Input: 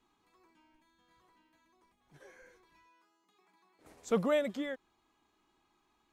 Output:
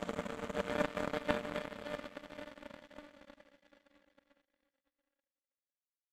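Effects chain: on a send: echo 71 ms -12.5 dB; on the sum: Paulstretch 6.5×, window 1.00 s, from 4.16; power-law curve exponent 3; gain +6.5 dB

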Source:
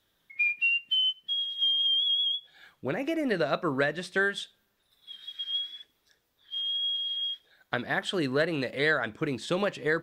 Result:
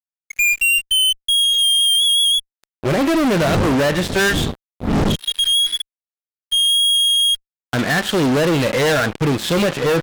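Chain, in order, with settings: 3.39–5.14 wind noise 240 Hz -34 dBFS; harmonic-percussive split percussive -13 dB; fuzz box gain 42 dB, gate -47 dBFS; gain -1 dB

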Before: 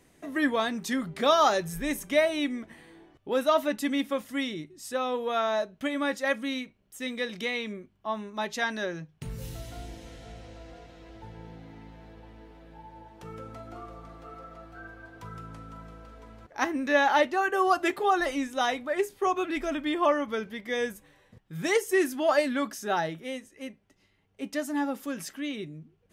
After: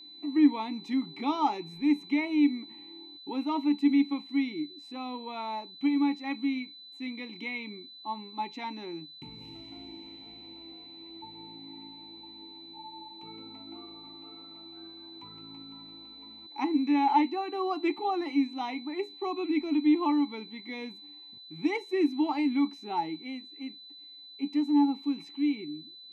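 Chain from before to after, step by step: vowel filter u; whine 4000 Hz -55 dBFS; gain +8.5 dB

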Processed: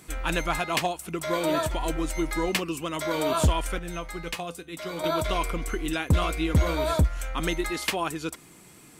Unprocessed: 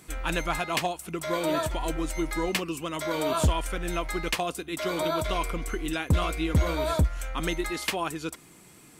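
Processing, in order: 3.79–5.04 resonator 170 Hz, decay 0.2 s, harmonics odd, mix 60%; gain +1.5 dB

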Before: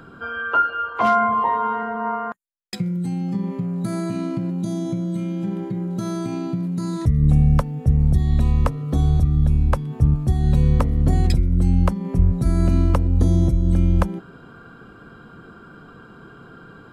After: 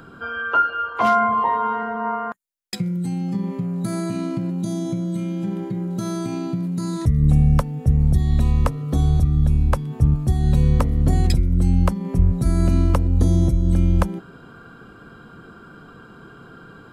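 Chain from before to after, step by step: high shelf 4700 Hz +5 dB

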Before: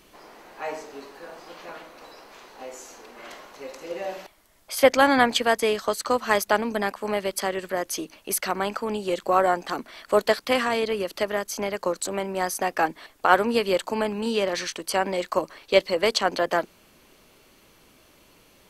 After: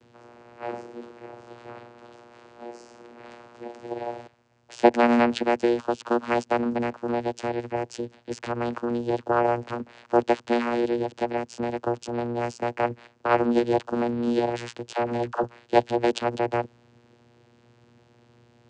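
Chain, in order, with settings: vocoder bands 8, saw 119 Hz; 14.93–15.44 dispersion lows, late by 63 ms, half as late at 370 Hz

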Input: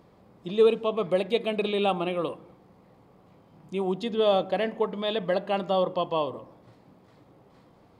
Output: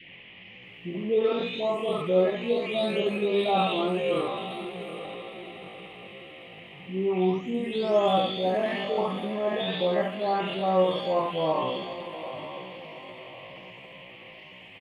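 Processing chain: spectral delay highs late, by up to 0.359 s; doubler 38 ms -3 dB; on a send: diffused feedback echo 0.452 s, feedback 46%, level -11 dB; on the sum: tempo 0.54×; band noise 1900–3100 Hz -49 dBFS

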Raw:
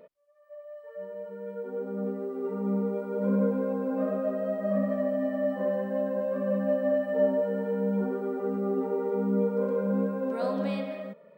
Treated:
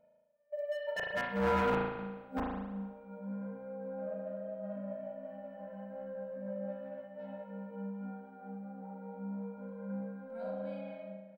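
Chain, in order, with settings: notch 450 Hz, Q 12; gate -44 dBFS, range -27 dB; high shelf 3000 Hz -7.5 dB; comb 1.3 ms, depth 95%; dynamic EQ 210 Hz, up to +3 dB, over -40 dBFS, Q 0.99; in parallel at -5 dB: soft clip -22 dBFS, distortion -13 dB; on the sum: flipped gate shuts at -26 dBFS, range -30 dB; wavefolder -34 dBFS; spring tank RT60 1.1 s, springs 36 ms, chirp 30 ms, DRR -3 dB; noise-modulated level, depth 50%; gain +8.5 dB

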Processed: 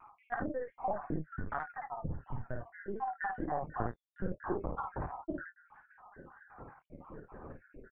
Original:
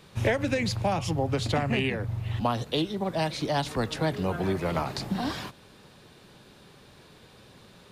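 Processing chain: random spectral dropouts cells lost 78%; elliptic low-pass 1600 Hz, stop band 60 dB; compressor 8:1, threshold -41 dBFS, peak gain reduction 16.5 dB; flange 0.59 Hz, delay 9.4 ms, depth 5.6 ms, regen -15%; LPC vocoder at 8 kHz pitch kept; early reflections 53 ms -3.5 dB, 79 ms -15.5 dB; shaped vibrato saw down 4.4 Hz, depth 100 cents; gain +11 dB

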